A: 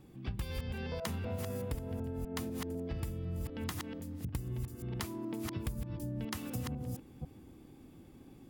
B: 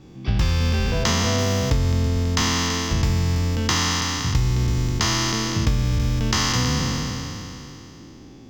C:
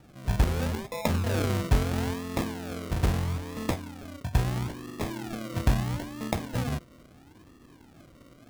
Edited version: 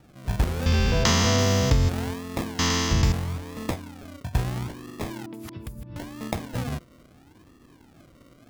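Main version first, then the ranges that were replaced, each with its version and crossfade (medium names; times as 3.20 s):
C
0.66–1.89 s: from B
2.59–3.12 s: from B
5.26–5.96 s: from A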